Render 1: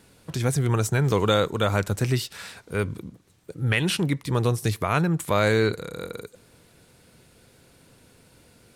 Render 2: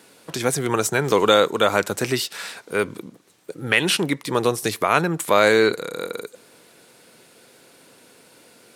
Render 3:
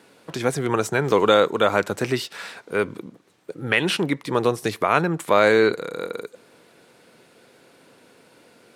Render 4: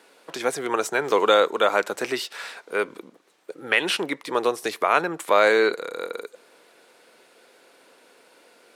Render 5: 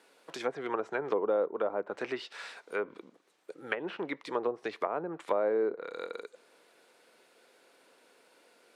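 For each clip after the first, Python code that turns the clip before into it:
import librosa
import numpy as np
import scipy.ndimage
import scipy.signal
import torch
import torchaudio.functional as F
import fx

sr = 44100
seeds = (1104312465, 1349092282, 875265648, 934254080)

y1 = scipy.signal.sosfilt(scipy.signal.butter(2, 290.0, 'highpass', fs=sr, output='sos'), x)
y1 = y1 * librosa.db_to_amplitude(6.5)
y2 = fx.high_shelf(y1, sr, hz=4600.0, db=-11.0)
y3 = scipy.signal.sosfilt(scipy.signal.butter(2, 400.0, 'highpass', fs=sr, output='sos'), y2)
y4 = fx.env_lowpass_down(y3, sr, base_hz=660.0, full_db=-17.5)
y4 = y4 * librosa.db_to_amplitude(-8.0)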